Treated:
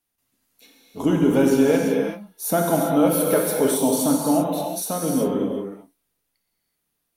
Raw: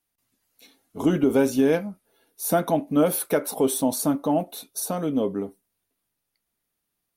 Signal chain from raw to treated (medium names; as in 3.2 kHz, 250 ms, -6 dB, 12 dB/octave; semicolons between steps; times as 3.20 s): gated-style reverb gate 410 ms flat, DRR -1 dB